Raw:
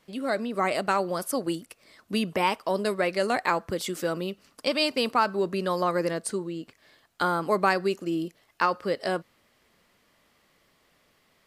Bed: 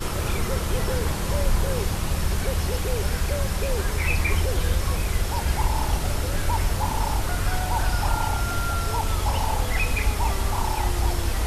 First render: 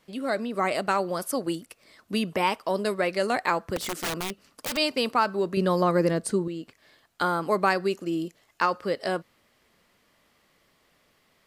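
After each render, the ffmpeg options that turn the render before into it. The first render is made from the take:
-filter_complex "[0:a]asettb=1/sr,asplit=3[s0][s1][s2];[s0]atrim=end=3.764[s3];[s1]atrim=start=3.76:end=4.77,asetpts=PTS-STARTPTS,afade=t=in:d=0.004:c=qsin,afade=t=out:st=1.006:d=0.004:c=qsin,aeval=exprs='(mod(16.8*val(0)+1,2)-1)/16.8':c=same[s4];[s2]atrim=start=4.766[s5];[s3][s4]acrossfade=d=0.004:c1=hsin:c2=qsin[s6];[s6][s5]acrossfade=d=0.004:c1=qsin:c2=hsin,asettb=1/sr,asplit=3[s7][s8][s9];[s7]atrim=end=5.574[s10];[s8]atrim=start=5.57:end=6.48,asetpts=PTS-STARTPTS,afade=t=in:d=0.004:c=qsin,afade=t=out:st=0.906:d=0.004:c=qsin,lowshelf=f=350:g=10[s11];[s9]atrim=start=6.476[s12];[s10][s11]acrossfade=d=0.004:c1=hsin:c2=qsin[s13];[s13][s12]acrossfade=d=0.004:c1=qsin:c2=hsin,asettb=1/sr,asplit=3[s14][s15][s16];[s14]atrim=end=8.134[s17];[s15]atrim=start=8.13:end=8.78,asetpts=PTS-STARTPTS,afade=t=in:d=0.004:c=qsin,afade=t=out:st=0.646:d=0.004:c=qsin,equalizer=f=7000:w=3.7:g=5.5[s18];[s16]atrim=start=8.776[s19];[s17][s18]acrossfade=d=0.004:c1=hsin:c2=qsin[s20];[s20][s19]acrossfade=d=0.004:c1=qsin:c2=hsin"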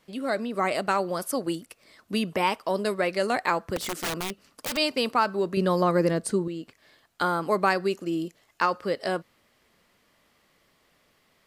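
-af anull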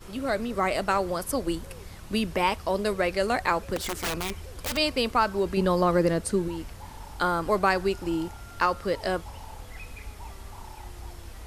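-filter_complex "[1:a]volume=0.126[s0];[0:a][s0]amix=inputs=2:normalize=0"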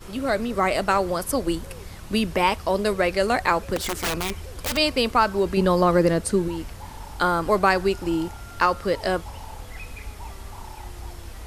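-af "volume=1.58"

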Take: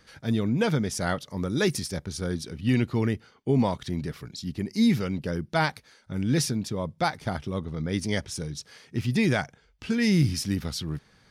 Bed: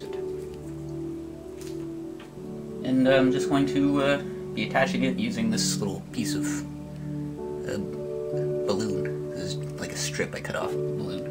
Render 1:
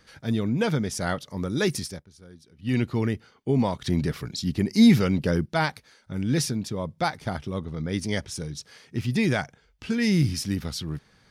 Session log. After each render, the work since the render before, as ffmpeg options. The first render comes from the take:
-filter_complex "[0:a]asettb=1/sr,asplit=3[s0][s1][s2];[s0]atrim=end=3.844[s3];[s1]atrim=start=3.84:end=5.46,asetpts=PTS-STARTPTS,afade=t=in:d=0.004:c=qsin,afade=t=out:st=1.616:d=0.004:c=qsin,acontrast=58[s4];[s2]atrim=start=5.456[s5];[s3][s4]acrossfade=d=0.004:c1=hsin:c2=qsin[s6];[s6][s5]acrossfade=d=0.004:c1=qsin:c2=hsin,asplit=3[s7][s8][s9];[s7]atrim=end=2.04,asetpts=PTS-STARTPTS,afade=t=out:st=1.84:d=0.2:silence=0.11885[s10];[s8]atrim=start=2.04:end=2.57,asetpts=PTS-STARTPTS,volume=0.119[s11];[s9]atrim=start=2.57,asetpts=PTS-STARTPTS,afade=t=in:d=0.2:silence=0.11885[s12];[s10][s11][s12]concat=n=3:v=0:a=1"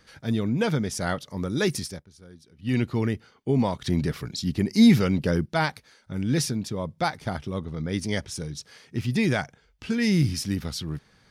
-af anull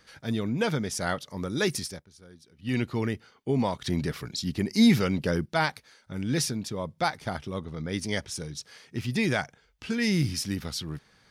-af "lowshelf=f=370:g=-5"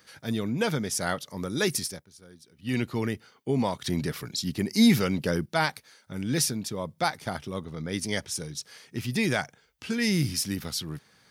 -af "highpass=88,highshelf=f=9700:g=11.5"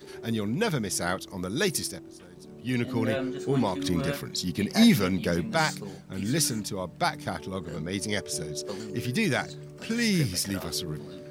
-filter_complex "[1:a]volume=0.316[s0];[0:a][s0]amix=inputs=2:normalize=0"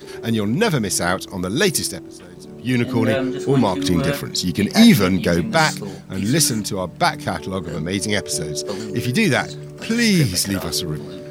-af "volume=2.82,alimiter=limit=0.891:level=0:latency=1"

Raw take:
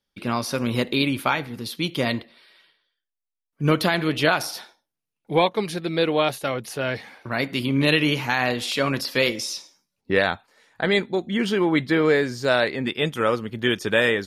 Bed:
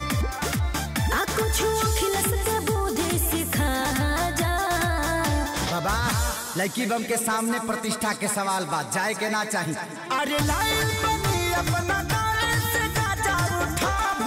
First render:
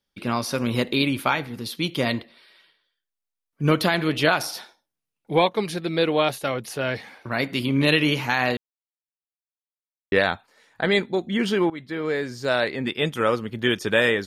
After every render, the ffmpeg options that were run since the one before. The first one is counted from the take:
-filter_complex "[0:a]asplit=4[s0][s1][s2][s3];[s0]atrim=end=8.57,asetpts=PTS-STARTPTS,afade=t=out:st=8.566:d=0.004:c=hsin[s4];[s1]atrim=start=8.57:end=10.12,asetpts=PTS-STARTPTS,volume=0[s5];[s2]atrim=start=10.12:end=11.7,asetpts=PTS-STARTPTS,afade=t=in:d=0.004:c=hsin,afade=t=out:st=1.576:d=0.004:c=hsin:silence=0.112202[s6];[s3]atrim=start=11.7,asetpts=PTS-STARTPTS,afade=t=in:d=1.63:c=qsin:silence=0.112202[s7];[s4][s5][s6][s7]concat=n=4:v=0:a=1"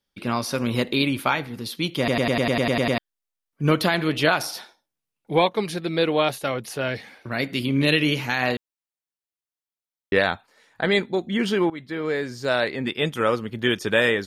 -filter_complex "[0:a]asettb=1/sr,asplit=3[s0][s1][s2];[s0]atrim=end=6.884[s3];[s1]atrim=start=6.88:end=8.43,asetpts=PTS-STARTPTS,afade=t=in:d=0.004:c=qsin,afade=t=out:st=1.546:d=0.004:c=qsin,equalizer=f=980:w=1.5:g=-5.5[s4];[s2]atrim=start=8.426[s5];[s3][s4]acrossfade=d=0.004:c1=hsin:c2=qsin[s6];[s6][s5]acrossfade=d=0.004:c1=qsin:c2=hsin,asplit=11[s7][s8][s9][s10][s11][s12][s13][s14][s15][s16][s17];[s7]atrim=end=2.082[s18];[s8]atrim=start=1.978:end=2.082[s19];[s9]atrim=start=1.978:end=2.082[s20];[s10]atrim=start=1.978:end=2.082[s21];[s11]atrim=start=1.978:end=2.082[s22];[s12]atrim=start=1.978:end=2.082[s23];[s13]atrim=start=1.978:end=2.082[s24];[s14]atrim=start=1.978:end=2.082[s25];[s15]atrim=start=1.978:end=2.082[s26];[s16]atrim=start=1.978:end=2.082[s27];[s17]atrim=start=2.978[s28];[s18][s19]acrossfade=d=0.004:c1=hsin:c2=hsin[s29];[s29][s20]acrossfade=d=0.004:c1=hsin:c2=hsin[s30];[s30][s21]acrossfade=d=0.004:c1=hsin:c2=hsin[s31];[s31][s22]acrossfade=d=0.004:c1=hsin:c2=hsin[s32];[s32][s23]acrossfade=d=0.004:c1=hsin:c2=hsin[s33];[s33][s24]acrossfade=d=0.004:c1=hsin:c2=hsin[s34];[s34][s25]acrossfade=d=0.004:c1=hsin:c2=hsin[s35];[s35][s26]acrossfade=d=0.004:c1=hsin:c2=hsin[s36];[s36][s27]acrossfade=d=0.004:c1=hsin:c2=hsin[s37];[s37][s28]acrossfade=d=0.004:c1=hsin:c2=hsin"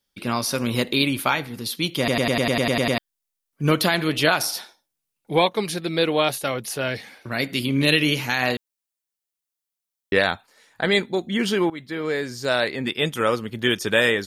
-af "highshelf=f=4600:g=8.5"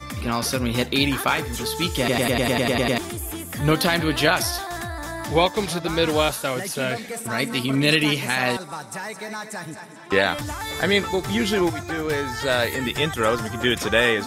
-filter_complex "[1:a]volume=0.447[s0];[0:a][s0]amix=inputs=2:normalize=0"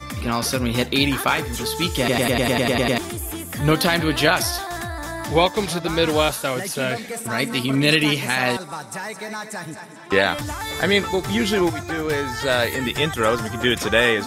-af "volume=1.19"

